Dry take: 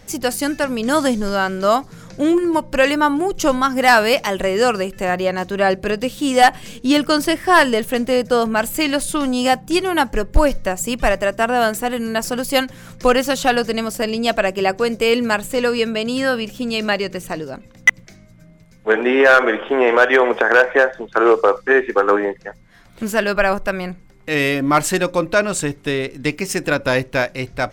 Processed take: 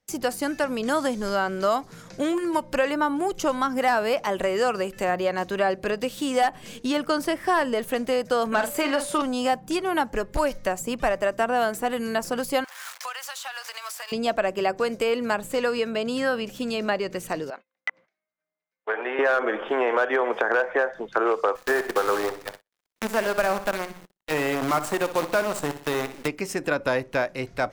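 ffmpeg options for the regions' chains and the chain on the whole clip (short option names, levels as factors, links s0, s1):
-filter_complex "[0:a]asettb=1/sr,asplit=3[s0][s1][s2];[s0]atrim=end=8.524[s3];[s1]atrim=start=8.52:end=9.22,asetpts=PTS-STARTPTS,afade=t=in:d=0.004:c=qsin,afade=t=out:st=0.696:d=0.004:c=qsin,asplit=2[s4][s5];[s5]highpass=f=720:p=1,volume=5.01,asoftclip=type=tanh:threshold=0.596[s6];[s4][s6]amix=inputs=2:normalize=0,lowpass=f=7300:p=1,volume=0.501,aeval=exprs='val(0)+0.0141*sin(2*PI*580*n/s)':c=same,asplit=2[s7][s8];[s8]adelay=43,volume=0.376[s9];[s7][s9]amix=inputs=2:normalize=0,atrim=end_sample=30870[s10];[s2]atrim=start=9.216[s11];[s3][s10]acrossfade=d=0.004:c1=hsin:c2=qsin[s12];[s12][s11]acrossfade=d=0.004:c1=qsin:c2=hsin,asettb=1/sr,asplit=3[s13][s14][s15];[s13]atrim=end=12.644[s16];[s14]atrim=start=12.64:end=14.12,asetpts=PTS-STARTPTS,afade=t=in:d=0.004:c=qsin,afade=t=out:st=1.476:d=0.004:c=qsin,aeval=exprs='val(0)+0.5*0.0376*sgn(val(0))':c=same,highpass=f=930:w=0.5412,highpass=f=930:w=1.3066,acompressor=threshold=0.0447:ratio=10:attack=3.2:release=140:knee=1:detection=peak[s17];[s15]atrim=start=14.116[s18];[s16][s17]acrossfade=d=0.004:c1=hsin:c2=qsin[s19];[s19][s18]acrossfade=d=0.004:c1=qsin:c2=hsin,asettb=1/sr,asplit=3[s20][s21][s22];[s20]atrim=end=17.504[s23];[s21]atrim=start=17.5:end=19.19,asetpts=PTS-STARTPTS,afade=t=in:d=0.004:c=qsin,afade=t=out:st=1.686:d=0.004:c=qsin,highpass=640,lowpass=2900,acompressor=threshold=0.1:ratio=2:attack=3.2:release=140:knee=1:detection=peak[s24];[s22]atrim=start=19.186[s25];[s23][s24]acrossfade=d=0.004:c1=hsin:c2=qsin[s26];[s26][s25]acrossfade=d=0.004:c1=qsin:c2=hsin,asettb=1/sr,asplit=3[s27][s28][s29];[s27]atrim=end=21.554[s30];[s28]atrim=start=21.55:end=26.28,asetpts=PTS-STARTPTS,afade=t=in:d=0.004:c=qsin,afade=t=out:st=4.726:d=0.004:c=qsin,bandreject=f=60:t=h:w=6,bandreject=f=120:t=h:w=6,bandreject=f=180:t=h:w=6,bandreject=f=240:t=h:w=6,bandreject=f=300:t=h:w=6,acrusher=bits=4:dc=4:mix=0:aa=0.000001,aecho=1:1:61|122|183:0.224|0.0784|0.0274,atrim=end_sample=208593[s31];[s29]atrim=start=26.276[s32];[s30][s31]acrossfade=d=0.004:c1=hsin:c2=qsin[s33];[s33][s32]acrossfade=d=0.004:c1=qsin:c2=hsin,agate=range=0.0398:threshold=0.0126:ratio=16:detection=peak,lowshelf=f=180:g=-9.5,acrossover=split=640|1400[s34][s35][s36];[s34]acompressor=threshold=0.0631:ratio=4[s37];[s35]acompressor=threshold=0.0708:ratio=4[s38];[s36]acompressor=threshold=0.0224:ratio=4[s39];[s37][s38][s39]amix=inputs=3:normalize=0,volume=0.841"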